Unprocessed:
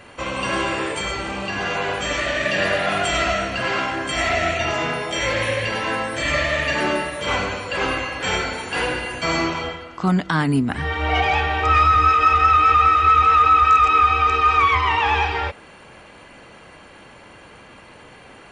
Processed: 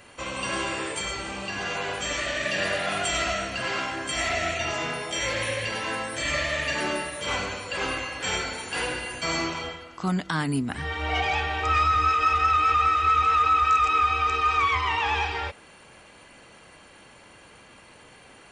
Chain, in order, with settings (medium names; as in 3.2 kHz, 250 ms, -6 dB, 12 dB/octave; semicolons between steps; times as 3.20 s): treble shelf 4.5 kHz +10.5 dB; trim -7.5 dB